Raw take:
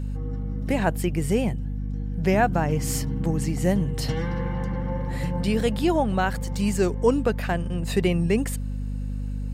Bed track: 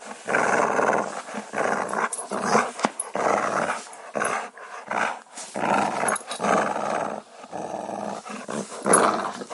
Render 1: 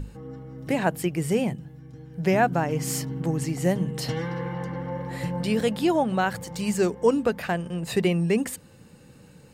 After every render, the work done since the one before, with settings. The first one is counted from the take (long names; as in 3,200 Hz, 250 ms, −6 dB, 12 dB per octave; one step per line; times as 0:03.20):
mains-hum notches 50/100/150/200/250 Hz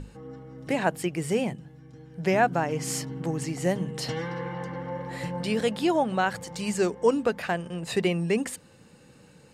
low-pass filter 10,000 Hz 12 dB per octave
low-shelf EQ 220 Hz −7 dB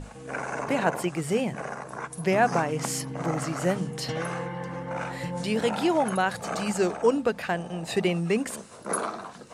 mix in bed track −11.5 dB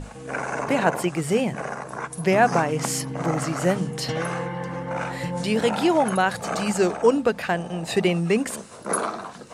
level +4 dB